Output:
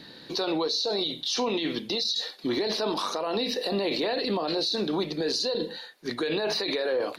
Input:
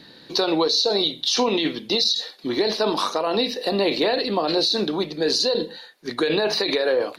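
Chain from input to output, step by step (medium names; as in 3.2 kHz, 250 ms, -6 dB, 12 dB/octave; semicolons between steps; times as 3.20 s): peak limiter -19.5 dBFS, peak gain reduction 10 dB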